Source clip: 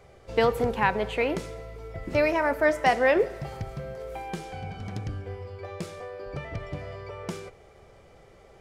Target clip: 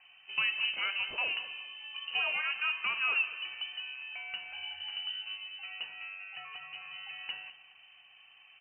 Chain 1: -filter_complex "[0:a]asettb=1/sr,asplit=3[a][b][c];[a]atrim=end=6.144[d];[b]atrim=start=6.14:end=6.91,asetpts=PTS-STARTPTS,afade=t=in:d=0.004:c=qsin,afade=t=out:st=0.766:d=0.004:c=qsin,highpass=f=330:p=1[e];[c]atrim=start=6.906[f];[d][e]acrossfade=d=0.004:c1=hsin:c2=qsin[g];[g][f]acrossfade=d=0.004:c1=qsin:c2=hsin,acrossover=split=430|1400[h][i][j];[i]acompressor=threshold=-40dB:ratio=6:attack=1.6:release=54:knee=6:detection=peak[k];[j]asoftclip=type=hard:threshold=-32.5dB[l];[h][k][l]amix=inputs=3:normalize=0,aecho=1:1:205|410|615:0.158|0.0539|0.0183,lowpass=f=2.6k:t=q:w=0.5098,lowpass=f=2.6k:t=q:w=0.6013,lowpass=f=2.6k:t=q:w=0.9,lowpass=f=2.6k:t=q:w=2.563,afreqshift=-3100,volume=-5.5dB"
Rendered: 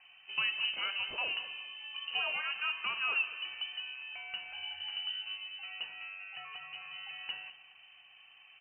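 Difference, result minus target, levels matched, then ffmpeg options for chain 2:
compressor: peak gain reduction +9 dB
-filter_complex "[0:a]asettb=1/sr,asplit=3[a][b][c];[a]atrim=end=6.144[d];[b]atrim=start=6.14:end=6.91,asetpts=PTS-STARTPTS,afade=t=in:d=0.004:c=qsin,afade=t=out:st=0.766:d=0.004:c=qsin,highpass=f=330:p=1[e];[c]atrim=start=6.906[f];[d][e]acrossfade=d=0.004:c1=hsin:c2=qsin[g];[g][f]acrossfade=d=0.004:c1=qsin:c2=hsin,acrossover=split=430|1400[h][i][j];[i]acompressor=threshold=-29.5dB:ratio=6:attack=1.6:release=54:knee=6:detection=peak[k];[j]asoftclip=type=hard:threshold=-32.5dB[l];[h][k][l]amix=inputs=3:normalize=0,aecho=1:1:205|410|615:0.158|0.0539|0.0183,lowpass=f=2.6k:t=q:w=0.5098,lowpass=f=2.6k:t=q:w=0.6013,lowpass=f=2.6k:t=q:w=0.9,lowpass=f=2.6k:t=q:w=2.563,afreqshift=-3100,volume=-5.5dB"

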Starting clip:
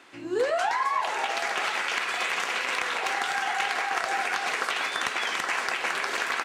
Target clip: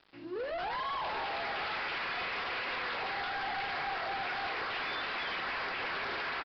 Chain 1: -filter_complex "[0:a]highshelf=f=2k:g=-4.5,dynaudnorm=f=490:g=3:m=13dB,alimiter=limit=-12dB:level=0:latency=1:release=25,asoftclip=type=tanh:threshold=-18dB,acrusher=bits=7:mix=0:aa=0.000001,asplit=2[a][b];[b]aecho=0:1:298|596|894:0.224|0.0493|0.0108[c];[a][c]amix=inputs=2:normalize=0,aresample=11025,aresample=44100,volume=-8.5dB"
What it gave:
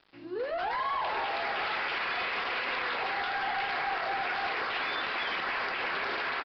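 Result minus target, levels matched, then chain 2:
soft clip: distortion -6 dB
-filter_complex "[0:a]highshelf=f=2k:g=-4.5,dynaudnorm=f=490:g=3:m=13dB,alimiter=limit=-12dB:level=0:latency=1:release=25,asoftclip=type=tanh:threshold=-25dB,acrusher=bits=7:mix=0:aa=0.000001,asplit=2[a][b];[b]aecho=0:1:298|596|894:0.224|0.0493|0.0108[c];[a][c]amix=inputs=2:normalize=0,aresample=11025,aresample=44100,volume=-8.5dB"

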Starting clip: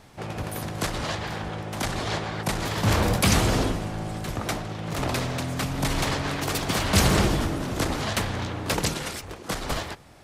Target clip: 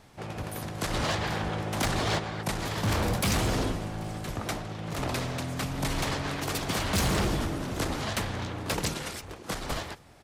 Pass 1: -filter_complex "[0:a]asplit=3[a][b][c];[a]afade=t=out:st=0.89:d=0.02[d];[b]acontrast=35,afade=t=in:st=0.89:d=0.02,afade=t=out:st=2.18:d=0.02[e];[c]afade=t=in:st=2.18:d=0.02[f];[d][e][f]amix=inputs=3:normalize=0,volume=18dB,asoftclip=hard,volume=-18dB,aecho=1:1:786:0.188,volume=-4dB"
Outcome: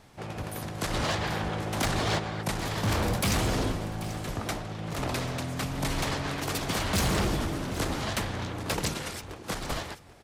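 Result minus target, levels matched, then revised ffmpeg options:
echo-to-direct +9.5 dB
-filter_complex "[0:a]asplit=3[a][b][c];[a]afade=t=out:st=0.89:d=0.02[d];[b]acontrast=35,afade=t=in:st=0.89:d=0.02,afade=t=out:st=2.18:d=0.02[e];[c]afade=t=in:st=2.18:d=0.02[f];[d][e][f]amix=inputs=3:normalize=0,volume=18dB,asoftclip=hard,volume=-18dB,aecho=1:1:786:0.0631,volume=-4dB"

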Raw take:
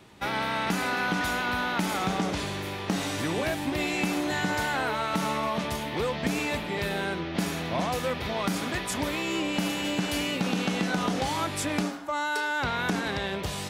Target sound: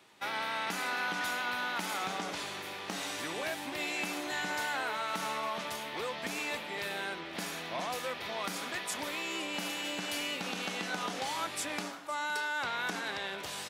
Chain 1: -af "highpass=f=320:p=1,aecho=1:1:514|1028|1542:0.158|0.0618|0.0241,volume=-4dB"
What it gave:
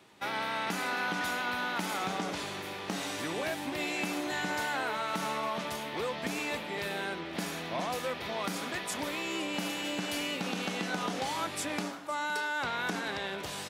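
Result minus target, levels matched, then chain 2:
250 Hz band +4.5 dB
-af "highpass=f=760:p=1,aecho=1:1:514|1028|1542:0.158|0.0618|0.0241,volume=-4dB"

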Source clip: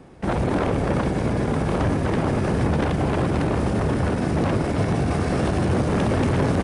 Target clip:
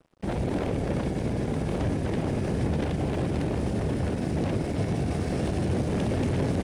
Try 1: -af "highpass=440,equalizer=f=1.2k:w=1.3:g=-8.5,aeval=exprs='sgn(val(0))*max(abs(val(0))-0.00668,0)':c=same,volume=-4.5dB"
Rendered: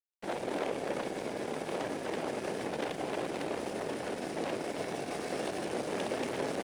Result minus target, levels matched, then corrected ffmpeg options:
500 Hz band +4.5 dB
-af "equalizer=f=1.2k:w=1.3:g=-8.5,aeval=exprs='sgn(val(0))*max(abs(val(0))-0.00668,0)':c=same,volume=-4.5dB"

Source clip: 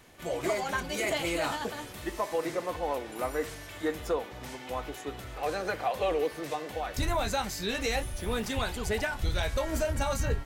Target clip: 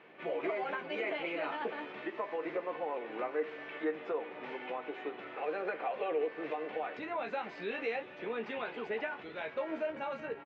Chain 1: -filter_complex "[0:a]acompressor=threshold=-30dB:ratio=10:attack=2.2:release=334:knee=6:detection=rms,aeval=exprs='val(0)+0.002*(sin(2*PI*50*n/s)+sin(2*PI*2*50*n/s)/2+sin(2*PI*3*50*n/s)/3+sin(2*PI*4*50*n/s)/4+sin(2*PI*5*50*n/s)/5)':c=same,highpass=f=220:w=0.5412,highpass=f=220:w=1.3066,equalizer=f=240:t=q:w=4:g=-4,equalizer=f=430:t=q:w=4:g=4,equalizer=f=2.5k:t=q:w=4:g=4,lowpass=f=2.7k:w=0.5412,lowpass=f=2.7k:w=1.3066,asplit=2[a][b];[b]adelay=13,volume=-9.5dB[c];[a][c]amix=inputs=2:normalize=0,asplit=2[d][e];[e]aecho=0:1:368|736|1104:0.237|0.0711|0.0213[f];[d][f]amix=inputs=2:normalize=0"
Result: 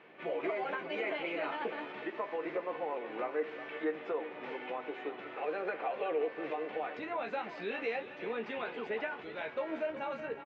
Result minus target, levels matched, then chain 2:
echo-to-direct +7 dB
-filter_complex "[0:a]acompressor=threshold=-30dB:ratio=10:attack=2.2:release=334:knee=6:detection=rms,aeval=exprs='val(0)+0.002*(sin(2*PI*50*n/s)+sin(2*PI*2*50*n/s)/2+sin(2*PI*3*50*n/s)/3+sin(2*PI*4*50*n/s)/4+sin(2*PI*5*50*n/s)/5)':c=same,highpass=f=220:w=0.5412,highpass=f=220:w=1.3066,equalizer=f=240:t=q:w=4:g=-4,equalizer=f=430:t=q:w=4:g=4,equalizer=f=2.5k:t=q:w=4:g=4,lowpass=f=2.7k:w=0.5412,lowpass=f=2.7k:w=1.3066,asplit=2[a][b];[b]adelay=13,volume=-9.5dB[c];[a][c]amix=inputs=2:normalize=0,asplit=2[d][e];[e]aecho=0:1:368|736:0.106|0.0318[f];[d][f]amix=inputs=2:normalize=0"

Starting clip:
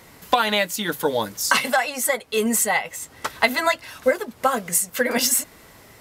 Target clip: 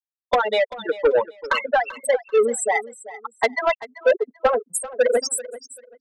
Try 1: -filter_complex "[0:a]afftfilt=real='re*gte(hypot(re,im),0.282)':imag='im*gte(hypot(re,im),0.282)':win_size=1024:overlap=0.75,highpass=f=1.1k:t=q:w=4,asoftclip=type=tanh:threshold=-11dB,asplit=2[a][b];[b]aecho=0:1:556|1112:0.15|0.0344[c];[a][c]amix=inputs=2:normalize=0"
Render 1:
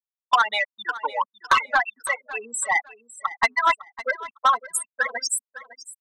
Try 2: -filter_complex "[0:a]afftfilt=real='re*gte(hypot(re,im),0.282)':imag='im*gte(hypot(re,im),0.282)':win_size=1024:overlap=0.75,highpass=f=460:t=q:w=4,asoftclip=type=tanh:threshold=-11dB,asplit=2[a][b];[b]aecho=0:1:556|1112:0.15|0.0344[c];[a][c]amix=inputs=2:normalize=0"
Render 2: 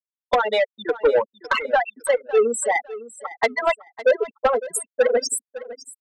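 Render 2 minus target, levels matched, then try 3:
echo 0.168 s late
-filter_complex "[0:a]afftfilt=real='re*gte(hypot(re,im),0.282)':imag='im*gte(hypot(re,im),0.282)':win_size=1024:overlap=0.75,highpass=f=460:t=q:w=4,asoftclip=type=tanh:threshold=-11dB,asplit=2[a][b];[b]aecho=0:1:388|776:0.15|0.0344[c];[a][c]amix=inputs=2:normalize=0"

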